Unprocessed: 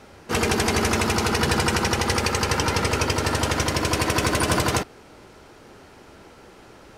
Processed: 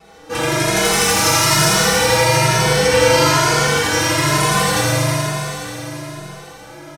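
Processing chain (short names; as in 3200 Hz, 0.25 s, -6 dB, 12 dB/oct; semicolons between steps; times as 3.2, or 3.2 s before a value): bell 720 Hz +4 dB 0.21 oct; comb 6.1 ms, depth 68%; 0.75–1.64 high shelf 3500 Hz +9.5 dB; soft clip -12.5 dBFS, distortion -17 dB; vibrato 0.35 Hz 5.6 cents; 2.86–3.3 flutter echo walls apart 6.8 m, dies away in 1.5 s; reverb RT60 4.3 s, pre-delay 7 ms, DRR -10 dB; endless flanger 2.3 ms +1.1 Hz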